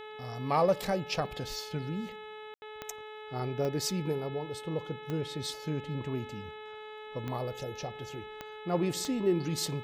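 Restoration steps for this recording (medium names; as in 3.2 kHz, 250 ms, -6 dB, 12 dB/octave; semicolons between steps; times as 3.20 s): de-click; de-hum 429.2 Hz, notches 9; room tone fill 2.54–2.62 s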